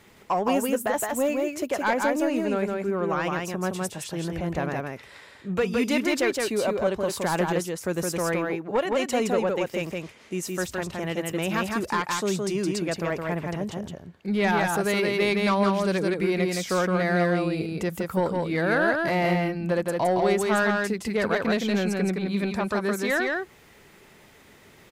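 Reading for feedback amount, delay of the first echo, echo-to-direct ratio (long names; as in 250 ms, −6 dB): repeats not evenly spaced, 166 ms, −3.0 dB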